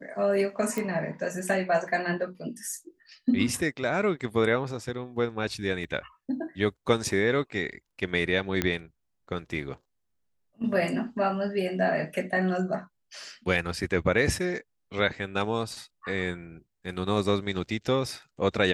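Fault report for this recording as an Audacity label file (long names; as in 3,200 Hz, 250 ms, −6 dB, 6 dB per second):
0.780000	0.780000	click
5.840000	5.840000	drop-out 3 ms
8.620000	8.620000	click −10 dBFS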